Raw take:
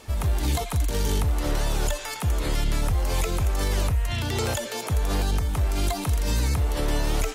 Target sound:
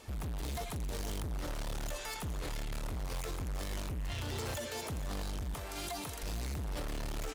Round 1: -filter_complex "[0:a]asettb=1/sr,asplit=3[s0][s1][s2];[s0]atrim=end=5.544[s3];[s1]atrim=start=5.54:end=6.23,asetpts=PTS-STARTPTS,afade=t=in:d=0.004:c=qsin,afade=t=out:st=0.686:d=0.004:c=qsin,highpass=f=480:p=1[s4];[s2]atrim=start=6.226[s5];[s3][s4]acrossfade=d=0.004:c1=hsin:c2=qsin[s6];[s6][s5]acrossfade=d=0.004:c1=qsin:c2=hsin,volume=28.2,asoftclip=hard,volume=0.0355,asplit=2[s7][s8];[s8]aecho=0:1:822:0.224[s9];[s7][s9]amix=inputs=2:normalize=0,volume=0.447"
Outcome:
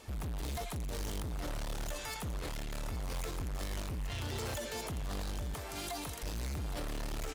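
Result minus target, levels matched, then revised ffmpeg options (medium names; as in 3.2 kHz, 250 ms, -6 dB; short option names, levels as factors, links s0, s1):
echo 363 ms late
-filter_complex "[0:a]asettb=1/sr,asplit=3[s0][s1][s2];[s0]atrim=end=5.544[s3];[s1]atrim=start=5.54:end=6.23,asetpts=PTS-STARTPTS,afade=t=in:d=0.004:c=qsin,afade=t=out:st=0.686:d=0.004:c=qsin,highpass=f=480:p=1[s4];[s2]atrim=start=6.226[s5];[s3][s4]acrossfade=d=0.004:c1=hsin:c2=qsin[s6];[s6][s5]acrossfade=d=0.004:c1=qsin:c2=hsin,volume=28.2,asoftclip=hard,volume=0.0355,asplit=2[s7][s8];[s8]aecho=0:1:459:0.224[s9];[s7][s9]amix=inputs=2:normalize=0,volume=0.447"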